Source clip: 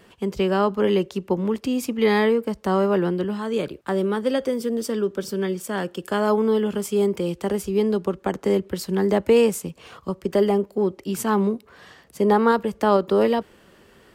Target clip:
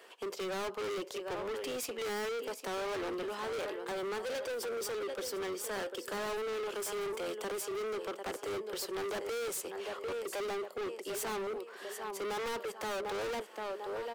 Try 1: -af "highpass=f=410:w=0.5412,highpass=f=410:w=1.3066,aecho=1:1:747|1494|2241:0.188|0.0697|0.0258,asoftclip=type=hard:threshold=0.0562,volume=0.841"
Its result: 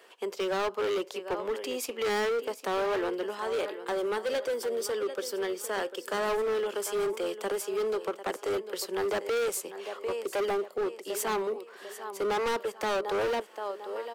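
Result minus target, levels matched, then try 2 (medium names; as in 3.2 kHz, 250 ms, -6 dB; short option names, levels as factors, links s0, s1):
hard clipper: distortion -4 dB
-af "highpass=f=410:w=0.5412,highpass=f=410:w=1.3066,aecho=1:1:747|1494|2241:0.188|0.0697|0.0258,asoftclip=type=hard:threshold=0.02,volume=0.841"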